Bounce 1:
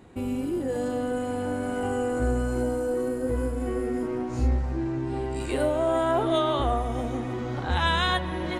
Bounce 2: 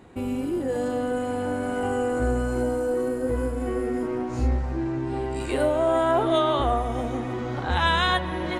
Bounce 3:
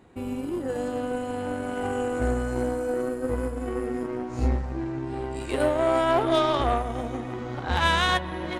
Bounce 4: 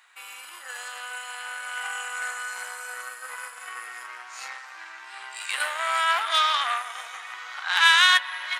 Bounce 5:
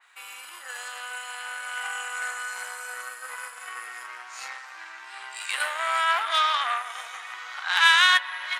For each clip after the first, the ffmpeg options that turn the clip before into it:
-af "equalizer=f=1.1k:w=0.34:g=3"
-af "aeval=exprs='0.335*(cos(1*acos(clip(val(0)/0.335,-1,1)))-cos(1*PI/2))+0.0211*(cos(7*acos(clip(val(0)/0.335,-1,1)))-cos(7*PI/2))':c=same"
-af "highpass=f=1.3k:w=0.5412,highpass=f=1.3k:w=1.3066,volume=9dB"
-af "adynamicequalizer=threshold=0.0224:dfrequency=3100:dqfactor=0.7:tfrequency=3100:tqfactor=0.7:attack=5:release=100:ratio=0.375:range=2.5:mode=cutabove:tftype=highshelf"

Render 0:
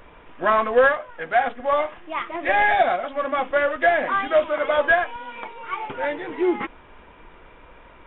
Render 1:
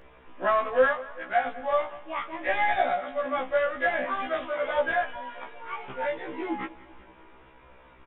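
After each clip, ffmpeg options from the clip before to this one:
-af "aecho=1:1:193|386|579|772|965:0.106|0.0636|0.0381|0.0229|0.0137,afftfilt=real='re*1.73*eq(mod(b,3),0)':imag='im*1.73*eq(mod(b,3),0)':win_size=2048:overlap=0.75,volume=-3.5dB"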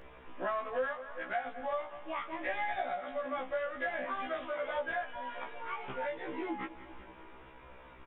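-af "acompressor=threshold=-37dB:ratio=2.5"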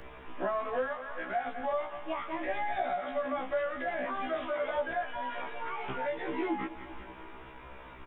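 -filter_complex "[0:a]bandreject=f=530:w=12,acrossover=split=260|310|780[a][b][c][d];[d]alimiter=level_in=14dB:limit=-24dB:level=0:latency=1:release=44,volume=-14dB[e];[a][b][c][e]amix=inputs=4:normalize=0,volume=5.5dB"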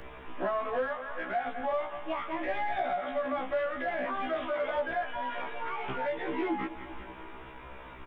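-af "asoftclip=type=tanh:threshold=-22.5dB,volume=2dB"

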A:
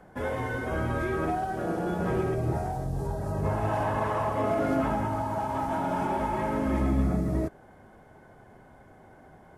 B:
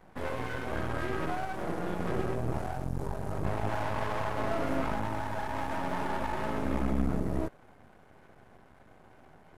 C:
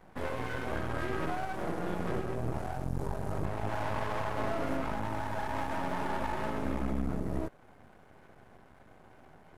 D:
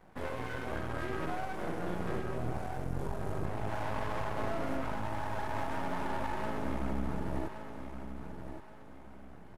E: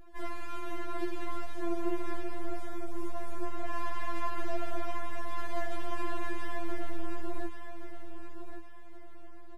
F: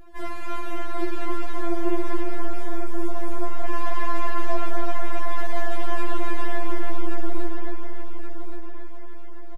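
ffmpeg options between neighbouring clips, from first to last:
-af "aeval=exprs='max(val(0),0)':c=same"
-af "alimiter=limit=-21dB:level=0:latency=1:release=382"
-af "aecho=1:1:1122|2244|3366|4488:0.355|0.124|0.0435|0.0152,volume=-2.5dB"
-af "aeval=exprs='val(0)+0.00631*(sin(2*PI*50*n/s)+sin(2*PI*2*50*n/s)/2+sin(2*PI*3*50*n/s)/3+sin(2*PI*4*50*n/s)/4+sin(2*PI*5*50*n/s)/5)':c=same,afftfilt=real='re*4*eq(mod(b,16),0)':imag='im*4*eq(mod(b,16),0)':win_size=2048:overlap=0.75,volume=3dB"
-filter_complex "[0:a]asplit=2[a][b];[b]adelay=274,lowpass=f=2.4k:p=1,volume=-3.5dB,asplit=2[c][d];[d]adelay=274,lowpass=f=2.4k:p=1,volume=0.48,asplit=2[e][f];[f]adelay=274,lowpass=f=2.4k:p=1,volume=0.48,asplit=2[g][h];[h]adelay=274,lowpass=f=2.4k:p=1,volume=0.48,asplit=2[i][j];[j]adelay=274,lowpass=f=2.4k:p=1,volume=0.48,asplit=2[k][l];[l]adelay=274,lowpass=f=2.4k:p=1,volume=0.48[m];[a][c][e][g][i][k][m]amix=inputs=7:normalize=0,volume=6dB"

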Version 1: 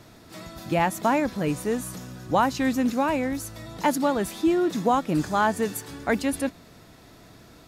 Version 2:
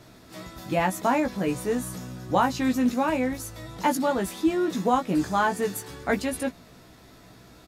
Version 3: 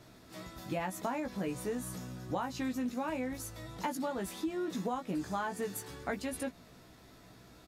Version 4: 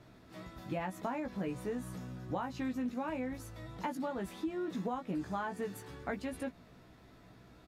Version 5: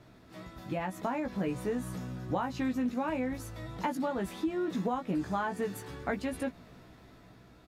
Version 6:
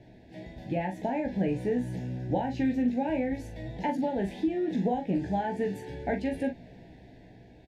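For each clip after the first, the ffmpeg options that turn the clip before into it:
-filter_complex "[0:a]asplit=2[a][b];[b]adelay=16,volume=-4.5dB[c];[a][c]amix=inputs=2:normalize=0,volume=-2dB"
-af "acompressor=threshold=-26dB:ratio=6,volume=-6dB"
-af "bass=f=250:g=2,treble=f=4k:g=-9,volume=-2dB"
-af "dynaudnorm=f=270:g=7:m=3.5dB,volume=1.5dB"
-filter_complex "[0:a]asuperstop=centerf=1200:order=8:qfactor=1.7,aemphasis=mode=reproduction:type=75fm,asplit=2[a][b];[b]adelay=41,volume=-8dB[c];[a][c]amix=inputs=2:normalize=0,volume=3dB"

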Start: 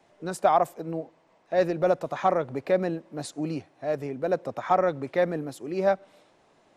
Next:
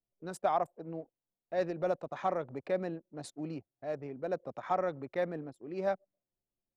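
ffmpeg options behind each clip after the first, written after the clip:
-af "anlmdn=0.398,volume=-9dB"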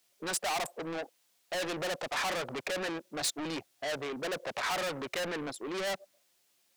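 -filter_complex "[0:a]asplit=2[a][b];[b]highpass=f=720:p=1,volume=37dB,asoftclip=type=tanh:threshold=-17dB[c];[a][c]amix=inputs=2:normalize=0,lowpass=f=7.4k:p=1,volume=-6dB,tiltshelf=f=1.4k:g=-5.5,volume=-7.5dB"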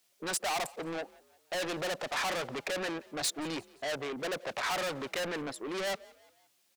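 -filter_complex "[0:a]asplit=4[a][b][c][d];[b]adelay=174,afreqshift=41,volume=-23.5dB[e];[c]adelay=348,afreqshift=82,volume=-29.9dB[f];[d]adelay=522,afreqshift=123,volume=-36.3dB[g];[a][e][f][g]amix=inputs=4:normalize=0"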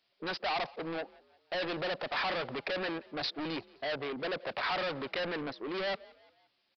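-af "aresample=11025,aresample=44100"

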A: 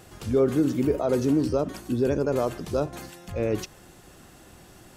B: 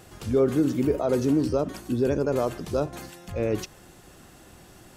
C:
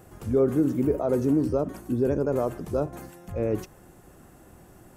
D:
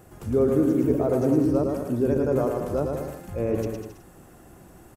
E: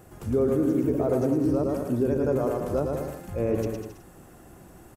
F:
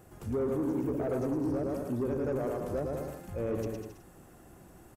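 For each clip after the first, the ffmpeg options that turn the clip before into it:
-af anull
-af "equalizer=f=4k:t=o:w=1.9:g=-13"
-af "aecho=1:1:110|198|268.4|324.7|369.8:0.631|0.398|0.251|0.158|0.1"
-af "alimiter=limit=-15dB:level=0:latency=1:release=102"
-af "asoftclip=type=tanh:threshold=-20dB,volume=-5dB"

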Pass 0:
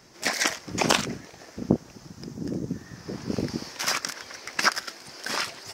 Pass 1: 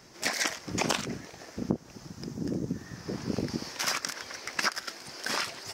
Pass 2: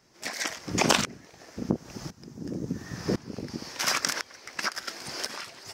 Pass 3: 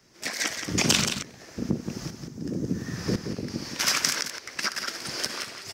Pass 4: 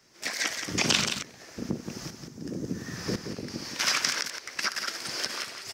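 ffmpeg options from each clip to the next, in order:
-af "acompressor=threshold=-27dB:ratio=2.5"
-af "aeval=exprs='val(0)*pow(10,-19*if(lt(mod(-0.95*n/s,1),2*abs(-0.95)/1000),1-mod(-0.95*n/s,1)/(2*abs(-0.95)/1000),(mod(-0.95*n/s,1)-2*abs(-0.95)/1000)/(1-2*abs(-0.95)/1000))/20)':c=same,volume=9dB"
-filter_complex "[0:a]equalizer=f=830:t=o:w=1:g=-5,acrossover=split=200|2300[a][b][c];[b]alimiter=limit=-23.5dB:level=0:latency=1:release=122[d];[a][d][c]amix=inputs=3:normalize=0,aecho=1:1:62|174:0.141|0.422,volume=3.5dB"
-filter_complex "[0:a]lowshelf=f=370:g=-6.5,acrossover=split=6200[a][b];[b]acompressor=threshold=-36dB:ratio=4:attack=1:release=60[c];[a][c]amix=inputs=2:normalize=0"

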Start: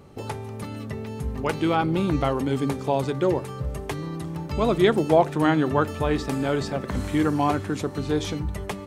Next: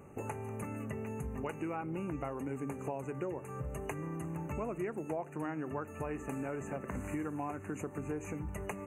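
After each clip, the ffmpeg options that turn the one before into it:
-af "afftfilt=real='re*(1-between(b*sr/4096,2900,6100))':imag='im*(1-between(b*sr/4096,2900,6100))':win_size=4096:overlap=0.75,lowshelf=f=93:g=-6.5,acompressor=threshold=-32dB:ratio=6,volume=-3.5dB"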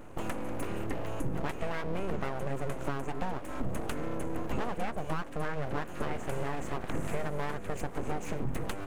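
-af "lowshelf=f=190:g=7,aeval=exprs='abs(val(0))':c=same,volume=5dB"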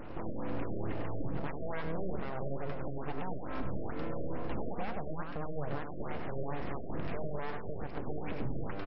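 -filter_complex "[0:a]alimiter=level_in=5dB:limit=-24dB:level=0:latency=1:release=397,volume=-5dB,asplit=2[a][b];[b]adelay=99.13,volume=-6dB,highshelf=f=4k:g=-2.23[c];[a][c]amix=inputs=2:normalize=0,afftfilt=real='re*lt(b*sr/1024,670*pow(5700/670,0.5+0.5*sin(2*PI*2.3*pts/sr)))':imag='im*lt(b*sr/1024,670*pow(5700/670,0.5+0.5*sin(2*PI*2.3*pts/sr)))':win_size=1024:overlap=0.75,volume=3.5dB"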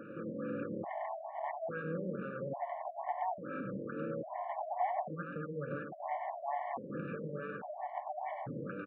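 -af "acontrast=89,highpass=f=170:w=0.5412,highpass=f=170:w=1.3066,equalizer=f=260:t=q:w=4:g=-5,equalizer=f=390:t=q:w=4:g=-9,equalizer=f=750:t=q:w=4:g=7,equalizer=f=1.2k:t=q:w=4:g=-3,lowpass=f=2.1k:w=0.5412,lowpass=f=2.1k:w=1.3066,afftfilt=real='re*gt(sin(2*PI*0.59*pts/sr)*(1-2*mod(floor(b*sr/1024/580),2)),0)':imag='im*gt(sin(2*PI*0.59*pts/sr)*(1-2*mod(floor(b*sr/1024/580),2)),0)':win_size=1024:overlap=0.75,volume=-3dB"

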